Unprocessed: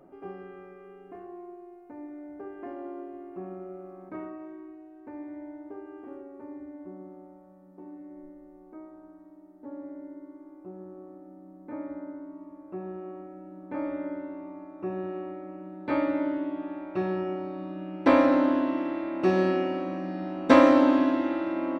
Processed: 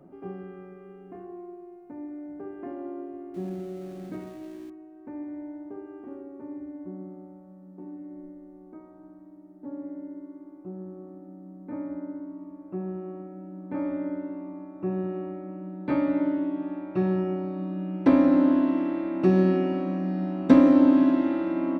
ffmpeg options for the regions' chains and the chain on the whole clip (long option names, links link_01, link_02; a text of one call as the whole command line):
ffmpeg -i in.wav -filter_complex "[0:a]asettb=1/sr,asplit=3[link_01][link_02][link_03];[link_01]atrim=end=3.344[link_04];[link_02]atrim=start=3.34:end=4.7,asetpts=PTS-STARTPTS,afade=type=in:duration=0.004:curve=qsin,afade=type=out:start_time=1.356:duration=0.004:curve=qsin,aeval=exprs='val(0)+0.5*0.00596*sgn(val(0))':channel_layout=same,equalizer=frequency=1100:width_type=o:width=0.68:gain=-8.5,bandreject=frequency=5100:width=30[link_05];[link_03]atrim=start=4.696[link_06];[link_04][link_05]acrossfade=duration=0.004:curve1=hsin:curve2=qsin[link_07];[link_07][link_06]acrossfade=duration=0.004:curve1=qsin:curve2=hsin,equalizer=frequency=160:width_type=o:width=2:gain=11.5,bandreject=frequency=104.8:width_type=h:width=4,bandreject=frequency=209.6:width_type=h:width=4,bandreject=frequency=314.4:width_type=h:width=4,bandreject=frequency=419.2:width_type=h:width=4,bandreject=frequency=524:width_type=h:width=4,bandreject=frequency=628.8:width_type=h:width=4,acrossover=split=450[link_08][link_09];[link_09]acompressor=threshold=-27dB:ratio=3[link_10];[link_08][link_10]amix=inputs=2:normalize=0,volume=-2.5dB" out.wav